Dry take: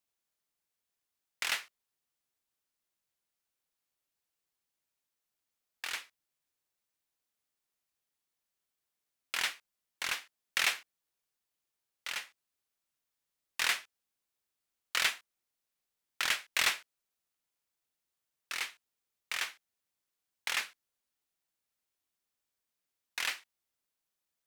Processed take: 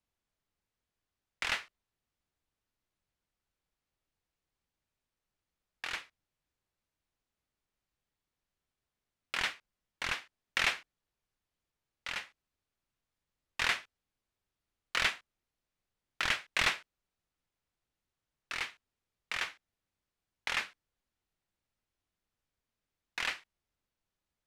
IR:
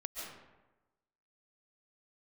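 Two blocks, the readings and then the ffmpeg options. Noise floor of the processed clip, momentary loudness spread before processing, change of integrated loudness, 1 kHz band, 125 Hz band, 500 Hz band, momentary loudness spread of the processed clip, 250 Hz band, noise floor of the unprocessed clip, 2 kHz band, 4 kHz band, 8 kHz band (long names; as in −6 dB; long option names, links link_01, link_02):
below −85 dBFS, 13 LU, −0.5 dB, +2.0 dB, can't be measured, +3.5 dB, 14 LU, +6.5 dB, below −85 dBFS, +0.5 dB, −1.5 dB, −6.5 dB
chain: -af "aemphasis=mode=reproduction:type=bsi,volume=2dB"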